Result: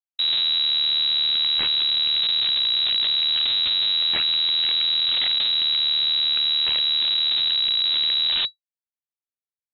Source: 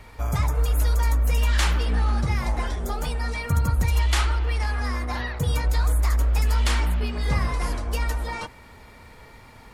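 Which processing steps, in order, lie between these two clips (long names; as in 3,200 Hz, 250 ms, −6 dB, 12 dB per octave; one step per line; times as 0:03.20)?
phase-vocoder pitch shift with formants kept −7.5 semitones
comparator with hysteresis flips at −28.5 dBFS
voice inversion scrambler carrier 3,900 Hz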